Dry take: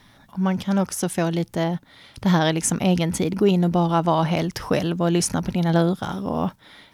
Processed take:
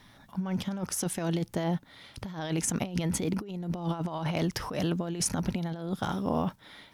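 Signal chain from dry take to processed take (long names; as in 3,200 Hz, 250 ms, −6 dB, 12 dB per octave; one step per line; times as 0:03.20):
compressor whose output falls as the input rises −23 dBFS, ratio −0.5
level −6.5 dB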